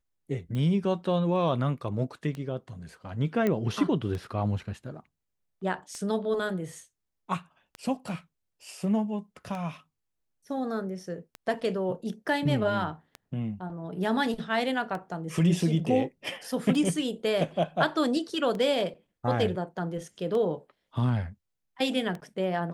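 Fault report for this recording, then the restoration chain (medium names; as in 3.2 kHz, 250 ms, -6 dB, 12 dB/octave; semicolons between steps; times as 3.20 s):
tick 33 1/3 rpm -23 dBFS
3.47 s: pop -15 dBFS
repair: de-click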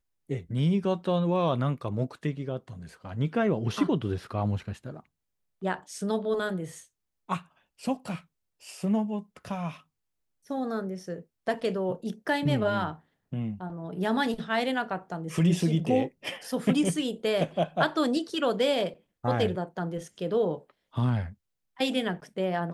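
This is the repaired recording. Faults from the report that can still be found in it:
nothing left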